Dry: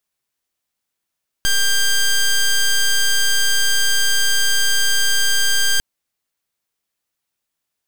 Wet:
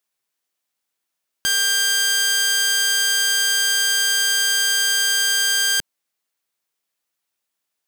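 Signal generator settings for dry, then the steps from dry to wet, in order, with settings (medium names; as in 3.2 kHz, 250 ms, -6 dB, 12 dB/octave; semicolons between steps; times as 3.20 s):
pulse 1.59 kHz, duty 12% -15 dBFS 4.35 s
high-pass 260 Hz 6 dB/octave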